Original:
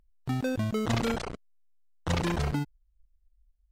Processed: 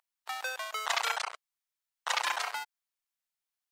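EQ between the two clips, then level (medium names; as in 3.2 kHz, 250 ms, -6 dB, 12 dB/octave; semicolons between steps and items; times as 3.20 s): inverse Chebyshev high-pass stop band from 240 Hz, stop band 60 dB; +5.0 dB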